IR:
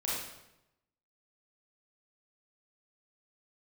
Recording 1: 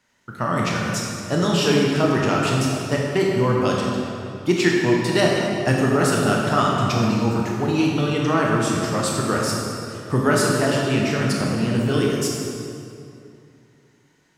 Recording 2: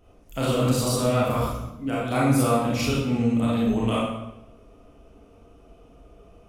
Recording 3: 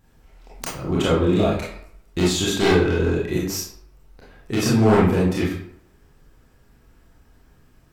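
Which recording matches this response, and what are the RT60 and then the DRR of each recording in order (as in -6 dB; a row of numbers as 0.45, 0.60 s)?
2; 2.5, 0.90, 0.65 s; -2.5, -7.0, -7.0 dB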